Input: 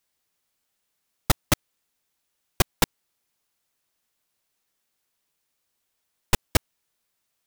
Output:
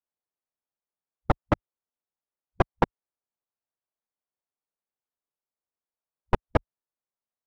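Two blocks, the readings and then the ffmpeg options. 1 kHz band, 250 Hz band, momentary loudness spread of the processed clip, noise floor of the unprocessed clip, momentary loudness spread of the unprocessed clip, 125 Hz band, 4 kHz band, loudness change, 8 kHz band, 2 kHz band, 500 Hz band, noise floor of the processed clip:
+3.0 dB, +1.0 dB, 5 LU, −78 dBFS, 5 LU, −1.0 dB, −17.5 dB, −2.5 dB, below −30 dB, −5.0 dB, +3.5 dB, below −85 dBFS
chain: -af "afwtdn=0.0126,lowpass=1400,equalizer=frequency=700:width_type=o:width=2.4:gain=6,volume=-1.5dB"

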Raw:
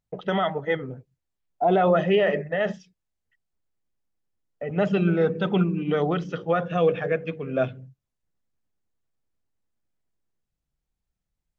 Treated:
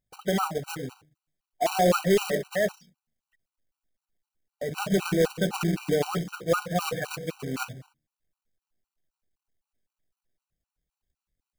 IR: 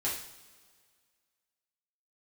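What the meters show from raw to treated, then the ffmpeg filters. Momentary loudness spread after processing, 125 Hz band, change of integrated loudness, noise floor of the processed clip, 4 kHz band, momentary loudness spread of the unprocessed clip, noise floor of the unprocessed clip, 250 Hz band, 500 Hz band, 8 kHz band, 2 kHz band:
12 LU, −4.0 dB, −3.5 dB, below −85 dBFS, +2.5 dB, 9 LU, −83 dBFS, −3.5 dB, −4.0 dB, can't be measured, −2.5 dB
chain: -af "bandreject=frequency=76.46:width_type=h:width=4,bandreject=frequency=152.92:width_type=h:width=4,bandreject=frequency=229.38:width_type=h:width=4,bandreject=frequency=305.84:width_type=h:width=4,acrusher=bits=2:mode=log:mix=0:aa=0.000001,afftfilt=real='re*gt(sin(2*PI*3.9*pts/sr)*(1-2*mod(floor(b*sr/1024/770),2)),0)':imag='im*gt(sin(2*PI*3.9*pts/sr)*(1-2*mod(floor(b*sr/1024/770),2)),0)':win_size=1024:overlap=0.75"

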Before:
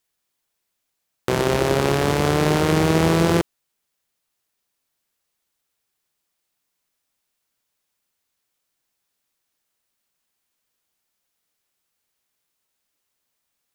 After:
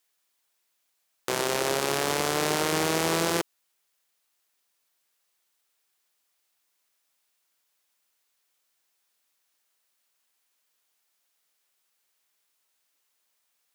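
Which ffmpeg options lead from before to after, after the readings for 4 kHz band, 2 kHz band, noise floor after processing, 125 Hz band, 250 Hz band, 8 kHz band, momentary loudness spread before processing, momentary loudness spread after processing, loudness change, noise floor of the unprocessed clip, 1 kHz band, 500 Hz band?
−1.5 dB, −4.0 dB, −75 dBFS, −15.5 dB, −11.0 dB, +2.0 dB, 7 LU, 6 LU, −6.5 dB, −78 dBFS, −5.0 dB, −8.0 dB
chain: -filter_complex "[0:a]highpass=frequency=600:poles=1,acrossover=split=4700[link_01][link_02];[link_01]alimiter=limit=-15.5dB:level=0:latency=1:release=120[link_03];[link_03][link_02]amix=inputs=2:normalize=0,volume=2.5dB"

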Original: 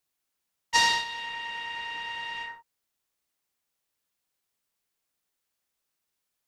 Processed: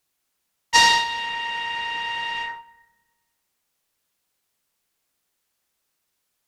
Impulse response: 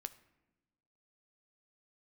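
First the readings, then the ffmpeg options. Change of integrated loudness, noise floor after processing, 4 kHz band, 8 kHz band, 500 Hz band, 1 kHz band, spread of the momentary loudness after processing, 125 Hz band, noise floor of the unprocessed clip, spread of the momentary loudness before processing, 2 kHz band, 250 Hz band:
+7.5 dB, −76 dBFS, +7.0 dB, +7.0 dB, +7.0 dB, +8.0 dB, 14 LU, +7.0 dB, −82 dBFS, 13 LU, +7.0 dB, +7.5 dB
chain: -filter_complex "[0:a]asplit=2[link_01][link_02];[1:a]atrim=start_sample=2205,asetrate=31311,aresample=44100[link_03];[link_02][link_03]afir=irnorm=-1:irlink=0,volume=7.5dB[link_04];[link_01][link_04]amix=inputs=2:normalize=0,volume=-2dB"

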